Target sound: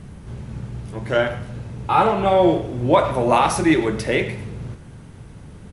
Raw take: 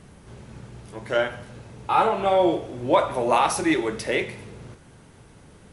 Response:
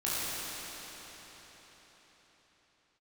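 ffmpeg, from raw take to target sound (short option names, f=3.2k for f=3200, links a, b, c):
-filter_complex "[0:a]bass=f=250:g=9,treble=f=4k:g=-2,asplit=2[a][b];[b]adelay=110,highpass=300,lowpass=3.4k,asoftclip=type=hard:threshold=-14.5dB,volume=-13dB[c];[a][c]amix=inputs=2:normalize=0,volume=3dB"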